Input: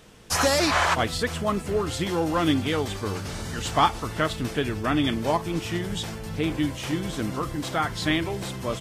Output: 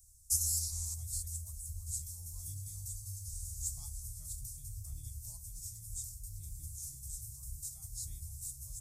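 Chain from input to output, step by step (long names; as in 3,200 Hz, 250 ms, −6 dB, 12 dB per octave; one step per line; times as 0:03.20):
inverse Chebyshev band-stop filter 200–3,200 Hz, stop band 50 dB
low-shelf EQ 130 Hz −8 dB
hum removal 57.39 Hz, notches 12
level +2 dB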